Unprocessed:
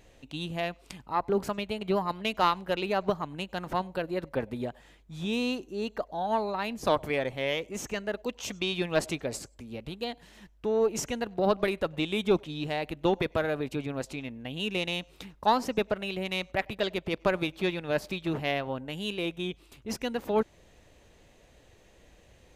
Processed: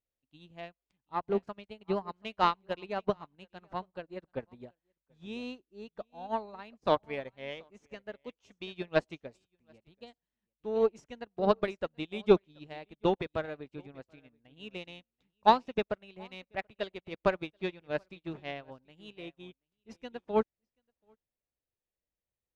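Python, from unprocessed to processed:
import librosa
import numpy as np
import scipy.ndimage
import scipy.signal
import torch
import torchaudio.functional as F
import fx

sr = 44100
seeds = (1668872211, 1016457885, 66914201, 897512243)

y = fx.air_absorb(x, sr, metres=82.0)
y = y + 10.0 ** (-15.0 / 20.0) * np.pad(y, (int(732 * sr / 1000.0), 0))[:len(y)]
y = fx.upward_expand(y, sr, threshold_db=-48.0, expansion=2.5)
y = y * librosa.db_to_amplitude(4.0)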